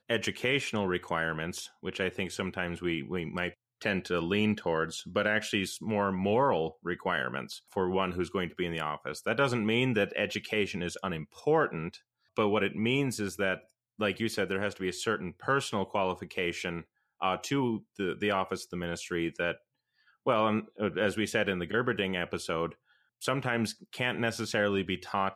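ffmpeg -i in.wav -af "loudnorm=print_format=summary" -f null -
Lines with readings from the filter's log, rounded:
Input Integrated:    -31.3 LUFS
Input True Peak:     -14.6 dBTP
Input LRA:             2.1 LU
Input Threshold:     -41.4 LUFS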